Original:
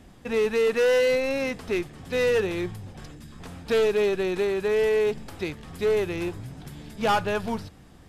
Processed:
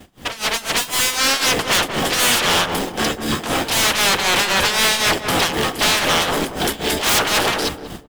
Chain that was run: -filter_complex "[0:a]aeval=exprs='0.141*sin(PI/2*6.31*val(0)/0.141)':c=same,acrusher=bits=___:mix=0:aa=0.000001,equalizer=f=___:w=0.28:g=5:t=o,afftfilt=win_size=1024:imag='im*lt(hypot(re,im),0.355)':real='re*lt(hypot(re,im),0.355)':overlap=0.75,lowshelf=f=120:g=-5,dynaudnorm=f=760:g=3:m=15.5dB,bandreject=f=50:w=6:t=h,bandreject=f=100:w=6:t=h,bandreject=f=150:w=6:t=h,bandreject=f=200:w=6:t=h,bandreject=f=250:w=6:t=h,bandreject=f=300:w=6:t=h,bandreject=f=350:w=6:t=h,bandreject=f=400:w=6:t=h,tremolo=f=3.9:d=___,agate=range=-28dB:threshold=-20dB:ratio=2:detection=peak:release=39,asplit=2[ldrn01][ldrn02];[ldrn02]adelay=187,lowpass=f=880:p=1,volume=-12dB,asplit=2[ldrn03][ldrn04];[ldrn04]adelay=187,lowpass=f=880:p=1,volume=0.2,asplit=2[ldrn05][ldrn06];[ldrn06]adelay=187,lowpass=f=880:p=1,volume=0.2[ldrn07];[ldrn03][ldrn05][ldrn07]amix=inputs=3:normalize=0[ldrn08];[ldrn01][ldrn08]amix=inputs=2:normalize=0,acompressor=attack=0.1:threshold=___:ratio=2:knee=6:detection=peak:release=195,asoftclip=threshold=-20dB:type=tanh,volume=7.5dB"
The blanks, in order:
6, 3100, 0.78, -18dB